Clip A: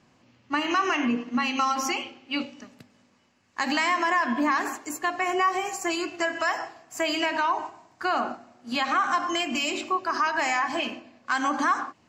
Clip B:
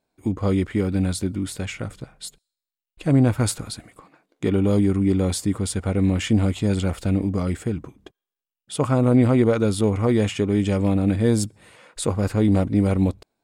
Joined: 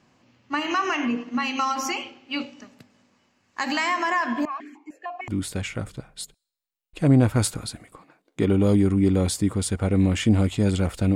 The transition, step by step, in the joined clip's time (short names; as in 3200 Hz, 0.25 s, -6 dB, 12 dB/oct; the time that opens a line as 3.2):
clip A
4.45–5.28 vowel sequencer 6.6 Hz
5.28 switch to clip B from 1.32 s